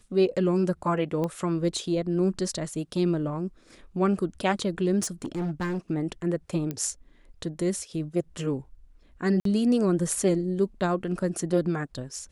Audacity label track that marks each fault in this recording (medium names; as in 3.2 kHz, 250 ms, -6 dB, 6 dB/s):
1.240000	1.240000	pop -18 dBFS
5.030000	5.780000	clipped -25.5 dBFS
6.710000	6.710000	pop -18 dBFS
9.400000	9.450000	dropout 53 ms